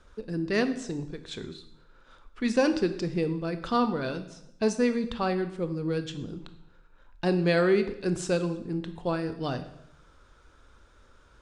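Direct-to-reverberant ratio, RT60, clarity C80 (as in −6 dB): 9.0 dB, 0.75 s, 14.0 dB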